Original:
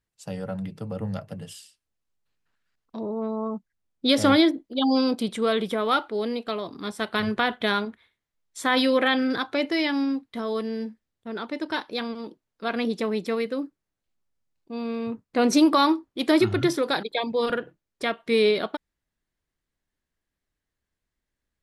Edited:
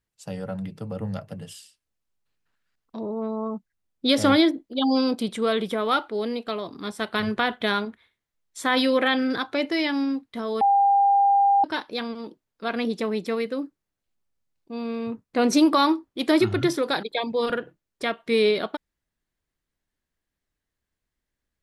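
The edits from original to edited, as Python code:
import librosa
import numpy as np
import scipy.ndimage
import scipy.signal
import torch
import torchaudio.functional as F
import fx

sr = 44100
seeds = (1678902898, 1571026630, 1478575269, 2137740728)

y = fx.edit(x, sr, fx.bleep(start_s=10.61, length_s=1.03, hz=799.0, db=-15.0), tone=tone)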